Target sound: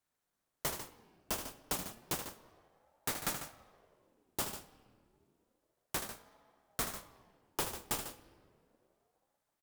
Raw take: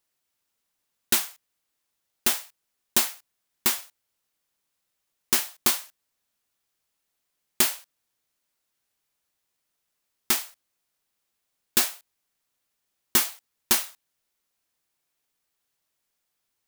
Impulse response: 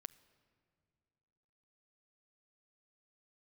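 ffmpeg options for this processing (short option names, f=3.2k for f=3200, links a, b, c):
-filter_complex "[0:a]highpass=f=260:w=0.5412,highpass=f=260:w=1.3066,equalizer=f=4.8k:t=o:w=0.77:g=2.5,asplit=2[a][b];[b]acrusher=samples=37:mix=1:aa=0.000001,volume=-4dB[c];[a][c]amix=inputs=2:normalize=0,asoftclip=type=tanh:threshold=-18dB,aecho=1:1:134.1|253.6:0.355|0.282[d];[1:a]atrim=start_sample=2205,asetrate=25578,aresample=44100[e];[d][e]afir=irnorm=-1:irlink=0,asetrate=76440,aresample=44100,aeval=exprs='val(0)*sin(2*PI*460*n/s+460*0.65/0.31*sin(2*PI*0.31*n/s))':c=same,volume=-2.5dB"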